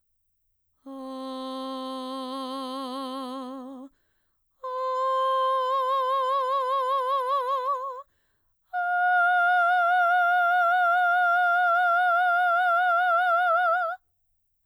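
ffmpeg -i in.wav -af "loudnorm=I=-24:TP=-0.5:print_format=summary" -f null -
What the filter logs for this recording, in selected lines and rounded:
Input Integrated:    -23.4 LUFS
Input True Peak:     -14.4 dBTP
Input LRA:            13.0 LU
Input Threshold:     -34.2 LUFS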